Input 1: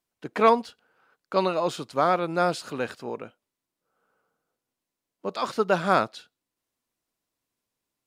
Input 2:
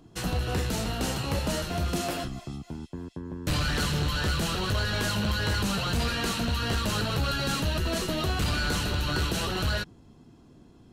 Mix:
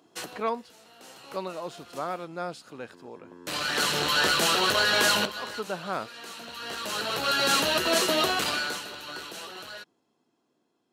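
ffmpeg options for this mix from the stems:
-filter_complex "[0:a]volume=0.299,asplit=2[s0][s1];[1:a]highpass=410,dynaudnorm=f=430:g=11:m=2.82,volume=0.944,afade=t=out:st=8.23:d=0.59:silence=0.237137[s2];[s1]apad=whole_len=481823[s3];[s2][s3]sidechaincompress=threshold=0.00251:ratio=5:attack=27:release=873[s4];[s0][s4]amix=inputs=2:normalize=0"

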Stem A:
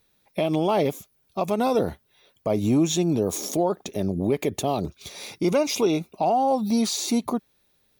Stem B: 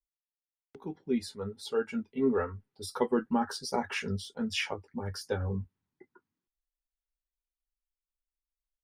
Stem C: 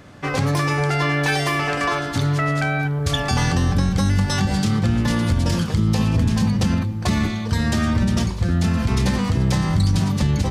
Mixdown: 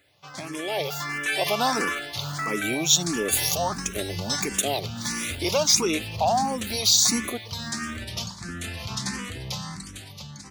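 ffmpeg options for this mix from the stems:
-filter_complex "[0:a]agate=range=0.0224:threshold=0.00112:ratio=3:detection=peak,highpass=f=220:p=1,volume=0.708,asplit=2[s0][s1];[1:a]acrusher=samples=23:mix=1:aa=0.000001,aeval=exprs='(mod(21.1*val(0)+1,2)-1)/21.1':c=same,volume=0.355[s2];[2:a]lowshelf=f=62:g=-9,volume=0.211[s3];[s1]apad=whole_len=389659[s4];[s2][s4]sidechaincompress=threshold=0.0224:ratio=3:attack=16:release=1440[s5];[s0][s5][s3]amix=inputs=3:normalize=0,tiltshelf=f=1300:g=-7.5,dynaudnorm=f=160:g=13:m=2.99,asplit=2[s6][s7];[s7]afreqshift=1.5[s8];[s6][s8]amix=inputs=2:normalize=1"

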